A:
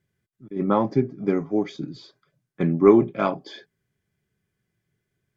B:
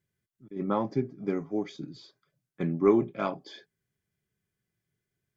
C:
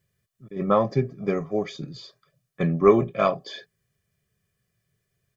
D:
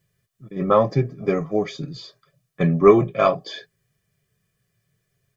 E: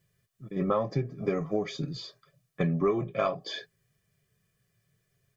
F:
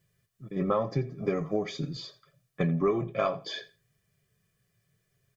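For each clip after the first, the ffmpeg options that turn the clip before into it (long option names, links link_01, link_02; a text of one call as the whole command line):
ffmpeg -i in.wav -af "highshelf=frequency=4500:gain=5.5,volume=-7.5dB" out.wav
ffmpeg -i in.wav -af "aecho=1:1:1.7:0.64,volume=7dB" out.wav
ffmpeg -i in.wav -af "flanger=delay=6.1:depth=1.4:regen=-44:speed=2:shape=sinusoidal,volume=7.5dB" out.wav
ffmpeg -i in.wav -af "acompressor=threshold=-23dB:ratio=4,volume=-2dB" out.wav
ffmpeg -i in.wav -af "aecho=1:1:84|168:0.126|0.0227" out.wav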